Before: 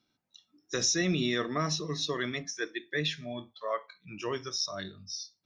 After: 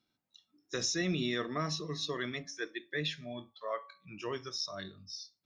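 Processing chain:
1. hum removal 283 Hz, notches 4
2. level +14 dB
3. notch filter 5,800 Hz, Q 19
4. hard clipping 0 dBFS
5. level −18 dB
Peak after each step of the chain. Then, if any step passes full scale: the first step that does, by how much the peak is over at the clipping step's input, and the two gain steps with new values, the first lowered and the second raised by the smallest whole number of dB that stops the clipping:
−16.0, −2.0, −3.5, −3.5, −21.5 dBFS
no step passes full scale

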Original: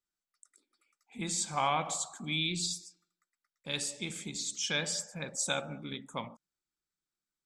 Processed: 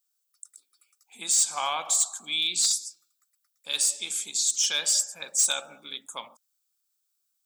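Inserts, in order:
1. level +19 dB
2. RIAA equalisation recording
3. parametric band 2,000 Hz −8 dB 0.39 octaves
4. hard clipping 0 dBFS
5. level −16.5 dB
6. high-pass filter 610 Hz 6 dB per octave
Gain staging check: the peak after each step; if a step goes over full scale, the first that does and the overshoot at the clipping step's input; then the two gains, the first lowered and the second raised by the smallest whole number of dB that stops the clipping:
+2.5, +9.5, +9.5, 0.0, −16.5, −15.0 dBFS
step 1, 9.5 dB
step 1 +9 dB, step 5 −6.5 dB

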